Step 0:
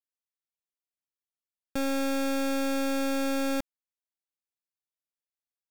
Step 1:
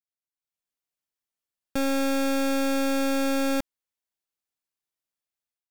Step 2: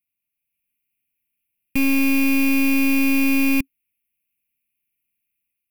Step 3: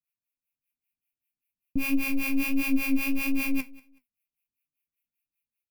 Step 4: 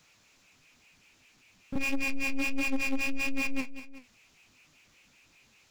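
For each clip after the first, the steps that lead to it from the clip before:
level rider gain up to 11 dB; trim -7.5 dB
FFT filter 270 Hz 0 dB, 680 Hz -29 dB, 1 kHz -24 dB, 1.5 kHz -21 dB, 2.5 kHz +9 dB, 4.3 kHz -29 dB, 7.5 kHz -25 dB, 11 kHz +4 dB; in parallel at -11.5 dB: integer overflow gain 26.5 dB; on the sum: trim +8.5 dB
harmonic tremolo 5.1 Hz, depth 100%, crossover 510 Hz; flange 1.5 Hz, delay 6 ms, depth 6.4 ms, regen +50%; feedback delay 189 ms, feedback 23%, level -21.5 dB
pre-echo 31 ms -12.5 dB; resampled via 16 kHz; power-law waveshaper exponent 0.5; trim -7 dB

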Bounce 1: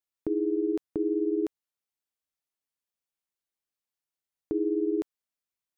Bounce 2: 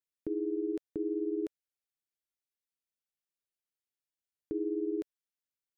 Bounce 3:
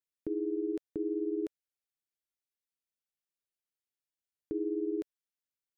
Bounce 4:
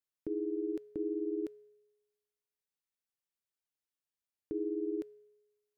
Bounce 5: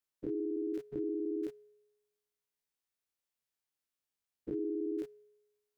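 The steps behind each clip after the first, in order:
high-order bell 900 Hz -8 dB 1.1 oct; trim -6 dB
no audible change
feedback comb 140 Hz, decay 1.1 s, harmonics odd, mix 50%; trim +3.5 dB
every event in the spectrogram widened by 60 ms; trim -2.5 dB

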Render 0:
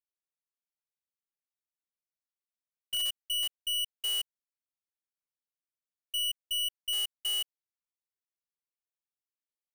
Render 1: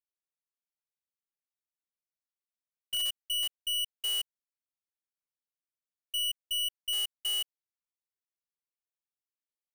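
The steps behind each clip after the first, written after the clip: no audible change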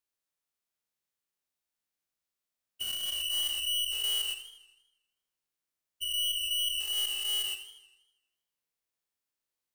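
every event in the spectrogram widened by 240 ms; peak limiter -26.5 dBFS, peak gain reduction 9 dB; modulated delay 80 ms, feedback 58%, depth 109 cents, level -11.5 dB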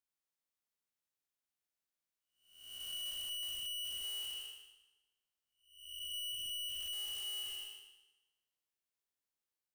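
spectral blur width 411 ms; hard clipper -37 dBFS, distortion -10 dB; reverberation RT60 0.95 s, pre-delay 52 ms, DRR 13.5 dB; trim -4 dB

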